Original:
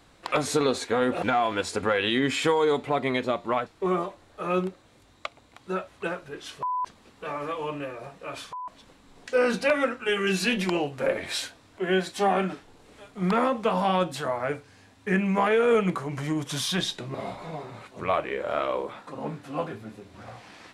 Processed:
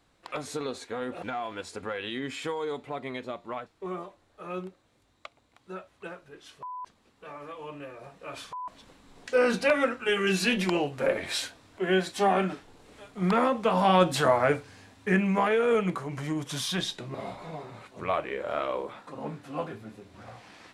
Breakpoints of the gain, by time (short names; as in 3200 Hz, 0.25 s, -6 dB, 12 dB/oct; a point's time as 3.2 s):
7.53 s -10 dB
8.65 s -0.5 dB
13.67 s -0.5 dB
14.23 s +7 dB
15.59 s -3 dB